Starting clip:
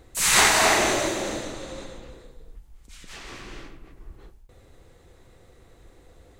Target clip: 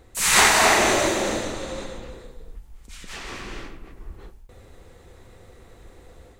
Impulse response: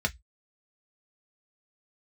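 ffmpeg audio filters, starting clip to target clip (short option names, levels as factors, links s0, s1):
-filter_complex "[0:a]dynaudnorm=f=190:g=3:m=1.78,asplit=2[s0][s1];[1:a]atrim=start_sample=2205,asetrate=61740,aresample=44100[s2];[s1][s2]afir=irnorm=-1:irlink=0,volume=0.0794[s3];[s0][s3]amix=inputs=2:normalize=0"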